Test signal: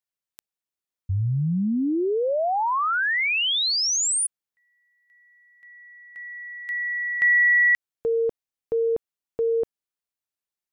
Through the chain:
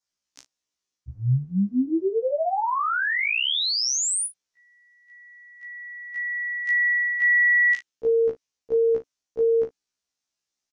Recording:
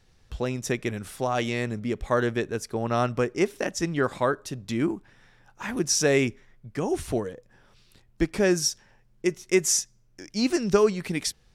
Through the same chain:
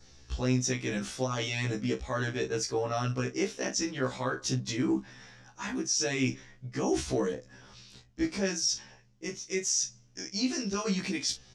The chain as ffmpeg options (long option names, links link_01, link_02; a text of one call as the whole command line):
ffmpeg -i in.wav -filter_complex "[0:a]lowpass=frequency=6000:width_type=q:width=3,adynamicequalizer=threshold=0.0178:dfrequency=3000:dqfactor=2.2:tfrequency=3000:tqfactor=2.2:attack=5:release=100:ratio=0.375:range=2:mode=boostabove:tftype=bell,areverse,acompressor=threshold=-26dB:ratio=5:attack=0.89:release=704:knee=6:detection=peak,areverse,equalizer=frequency=280:width_type=o:width=0.21:gain=5.5,asplit=2[link_01][link_02];[link_02]adelay=40,volume=-13dB[link_03];[link_01][link_03]amix=inputs=2:normalize=0,alimiter=level_in=0.5dB:limit=-24dB:level=0:latency=1:release=38,volume=-0.5dB,afftfilt=real='re*1.73*eq(mod(b,3),0)':imag='im*1.73*eq(mod(b,3),0)':win_size=2048:overlap=0.75,volume=7dB" out.wav